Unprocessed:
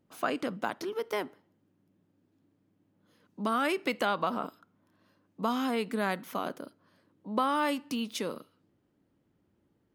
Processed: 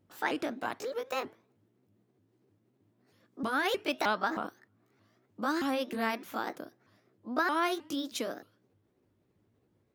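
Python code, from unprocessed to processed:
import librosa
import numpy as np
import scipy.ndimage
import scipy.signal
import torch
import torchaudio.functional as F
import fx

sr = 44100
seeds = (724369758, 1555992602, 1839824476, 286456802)

y = fx.pitch_ramps(x, sr, semitones=5.5, every_ms=312)
y = fx.peak_eq(y, sr, hz=98.0, db=12.0, octaves=0.23)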